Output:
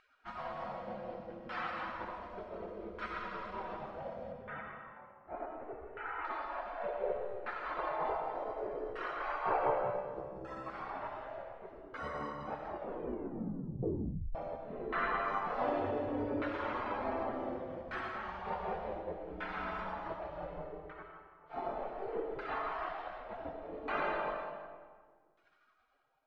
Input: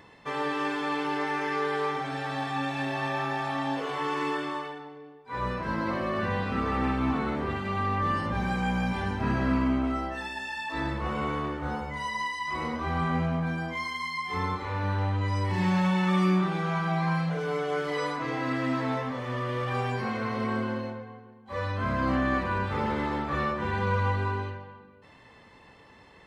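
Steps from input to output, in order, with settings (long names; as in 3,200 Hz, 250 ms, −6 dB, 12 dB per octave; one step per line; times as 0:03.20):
reverb reduction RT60 0.69 s
0:04.32–0:06.25: low-pass filter 2,200 Hz 24 dB per octave
gate on every frequency bin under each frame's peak −25 dB weak
auto-filter low-pass saw down 0.67 Hz 380–1,500 Hz
comb and all-pass reverb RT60 1.6 s, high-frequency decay 0.65×, pre-delay 45 ms, DRR 3 dB
0:12.68: tape stop 1.67 s
level +11 dB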